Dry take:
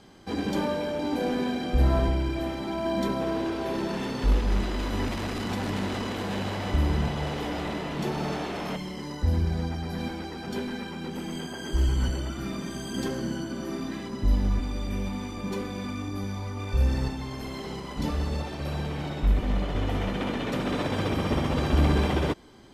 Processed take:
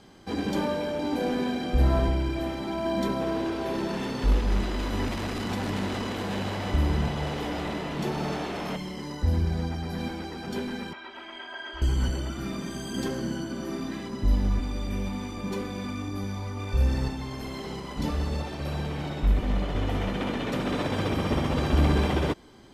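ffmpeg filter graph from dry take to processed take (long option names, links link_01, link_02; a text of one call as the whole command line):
ffmpeg -i in.wav -filter_complex "[0:a]asettb=1/sr,asplit=3[link_01][link_02][link_03];[link_01]atrim=end=10.934[link_04];[link_02]atrim=start=10.93:end=11.82,asetpts=PTS-STARTPTS,afade=type=in:duration=0.004:curve=qsin,afade=type=out:start_time=0.886:duration=0.004:curve=qsin,acrossover=split=4300[link_05][link_06];[link_06]acompressor=threshold=-56dB:ratio=4:attack=1:release=60[link_07];[link_05][link_07]amix=inputs=2:normalize=0,acrossover=split=590 4100:gain=0.0631 1 0.0891[link_08][link_09][link_10];[link_08][link_09][link_10]amix=inputs=3:normalize=0,aecho=1:1:3.1:0.86,atrim=end_sample=39249[link_11];[link_03]atrim=start=11.816[link_12];[link_04][link_11]acrossfade=duration=0.004:curve1=hsin:curve2=qsin[link_13];[link_13][link_12]acrossfade=duration=0.004:curve1=qsin:curve2=hsin" out.wav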